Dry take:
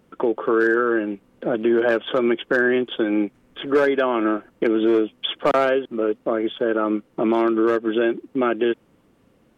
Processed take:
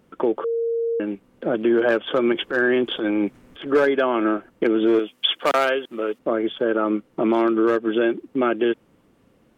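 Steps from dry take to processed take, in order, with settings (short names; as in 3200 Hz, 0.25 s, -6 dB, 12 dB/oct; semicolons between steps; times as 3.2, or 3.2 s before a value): 0.44–1 bleep 462 Hz -20 dBFS; 2.32–3.66 transient shaper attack -9 dB, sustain +7 dB; 4.99–6.19 tilt +3 dB/oct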